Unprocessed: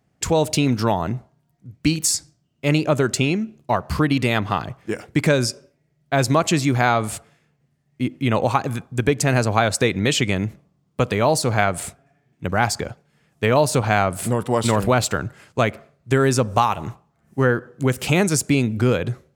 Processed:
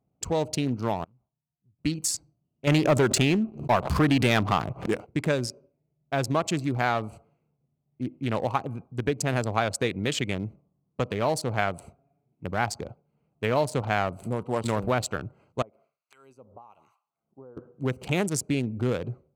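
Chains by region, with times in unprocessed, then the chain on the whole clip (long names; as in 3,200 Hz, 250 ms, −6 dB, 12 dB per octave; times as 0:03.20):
0:01.04–0:01.79: guitar amp tone stack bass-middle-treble 5-5-5 + downward compressor 8 to 1, threshold −49 dBFS + highs frequency-modulated by the lows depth 0.58 ms
0:02.67–0:05.08: leveller curve on the samples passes 2 + background raised ahead of every attack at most 140 dB per second
0:15.62–0:17.57: spectral tilt +4.5 dB per octave + downward compressor 2 to 1, threshold −41 dBFS + two-band tremolo in antiphase 1.1 Hz, depth 100%, crossover 1,000 Hz
whole clip: adaptive Wiener filter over 25 samples; low-shelf EQ 360 Hz −3 dB; level −6 dB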